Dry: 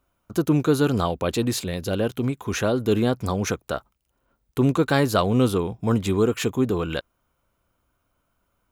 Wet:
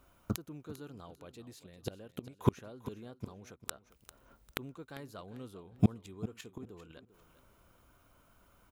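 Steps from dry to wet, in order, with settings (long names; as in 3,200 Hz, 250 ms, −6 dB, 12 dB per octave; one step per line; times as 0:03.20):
gate with flip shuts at −19 dBFS, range −34 dB
on a send: repeating echo 397 ms, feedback 24%, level −15 dB
on the sum: level +6.5 dB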